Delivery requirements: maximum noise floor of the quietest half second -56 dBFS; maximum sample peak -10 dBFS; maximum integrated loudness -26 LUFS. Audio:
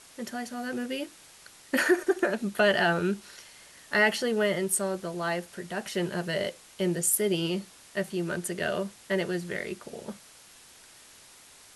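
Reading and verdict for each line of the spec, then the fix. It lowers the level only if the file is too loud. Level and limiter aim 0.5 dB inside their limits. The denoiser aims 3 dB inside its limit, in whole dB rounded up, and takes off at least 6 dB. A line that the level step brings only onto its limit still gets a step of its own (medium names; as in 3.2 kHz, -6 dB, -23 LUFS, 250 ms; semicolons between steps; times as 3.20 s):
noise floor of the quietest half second -53 dBFS: fail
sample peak -11.0 dBFS: pass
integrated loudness -28.5 LUFS: pass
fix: noise reduction 6 dB, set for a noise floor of -53 dBFS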